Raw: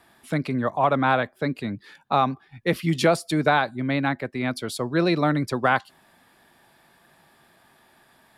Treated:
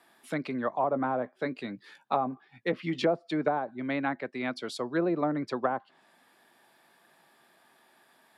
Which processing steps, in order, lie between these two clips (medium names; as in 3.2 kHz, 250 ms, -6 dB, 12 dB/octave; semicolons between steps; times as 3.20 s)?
high-pass 240 Hz 12 dB/octave; low-pass that closes with the level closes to 710 Hz, closed at -17 dBFS; 0.90–3.00 s: doubling 16 ms -11.5 dB; trim -4.5 dB